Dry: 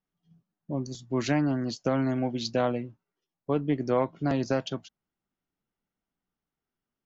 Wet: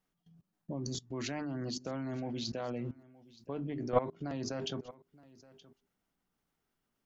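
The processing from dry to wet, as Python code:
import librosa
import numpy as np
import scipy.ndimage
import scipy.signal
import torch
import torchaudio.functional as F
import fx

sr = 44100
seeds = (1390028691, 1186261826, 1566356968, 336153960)

y = fx.hum_notches(x, sr, base_hz=50, count=8)
y = fx.level_steps(y, sr, step_db=23)
y = y + 10.0 ** (-21.5 / 20.0) * np.pad(y, (int(922 * sr / 1000.0), 0))[:len(y)]
y = F.gain(torch.from_numpy(y), 8.5).numpy()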